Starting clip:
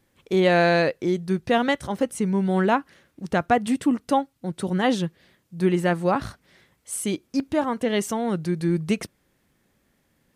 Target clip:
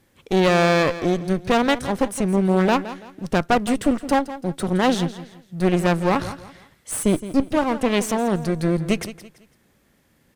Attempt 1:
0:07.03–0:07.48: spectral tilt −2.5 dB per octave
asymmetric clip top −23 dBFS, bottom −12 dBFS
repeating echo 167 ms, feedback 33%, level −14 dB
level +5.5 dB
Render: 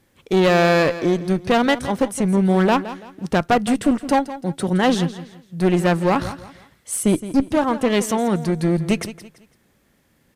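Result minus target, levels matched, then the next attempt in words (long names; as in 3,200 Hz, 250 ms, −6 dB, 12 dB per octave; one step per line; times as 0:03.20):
asymmetric clip: distortion −4 dB
0:07.03–0:07.48: spectral tilt −2.5 dB per octave
asymmetric clip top −34.5 dBFS, bottom −12 dBFS
repeating echo 167 ms, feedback 33%, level −14 dB
level +5.5 dB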